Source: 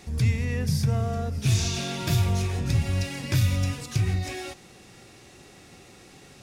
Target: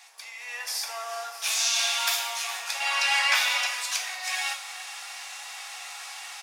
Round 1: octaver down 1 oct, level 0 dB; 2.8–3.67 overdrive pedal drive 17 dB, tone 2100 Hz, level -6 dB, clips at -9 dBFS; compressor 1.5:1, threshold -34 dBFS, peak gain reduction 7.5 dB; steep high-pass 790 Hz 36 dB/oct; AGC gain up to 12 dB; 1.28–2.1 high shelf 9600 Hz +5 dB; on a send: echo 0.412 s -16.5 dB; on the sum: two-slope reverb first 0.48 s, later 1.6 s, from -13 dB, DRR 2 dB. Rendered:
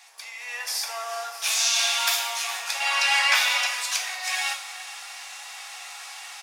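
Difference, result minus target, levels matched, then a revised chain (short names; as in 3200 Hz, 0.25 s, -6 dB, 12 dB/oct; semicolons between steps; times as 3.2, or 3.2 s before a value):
compressor: peak gain reduction -2.5 dB
octaver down 1 oct, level 0 dB; 2.8–3.67 overdrive pedal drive 17 dB, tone 2100 Hz, level -6 dB, clips at -9 dBFS; compressor 1.5:1, threshold -41.5 dBFS, peak gain reduction 10 dB; steep high-pass 790 Hz 36 dB/oct; AGC gain up to 12 dB; 1.28–2.1 high shelf 9600 Hz +5 dB; on a send: echo 0.412 s -16.5 dB; on the sum: two-slope reverb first 0.48 s, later 1.6 s, from -13 dB, DRR 2 dB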